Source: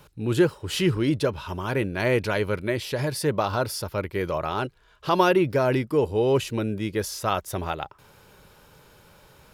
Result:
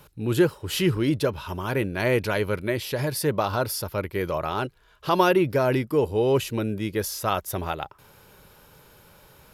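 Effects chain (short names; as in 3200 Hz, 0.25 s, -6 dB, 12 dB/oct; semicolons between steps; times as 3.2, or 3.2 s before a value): bell 12000 Hz +9 dB 0.28 oct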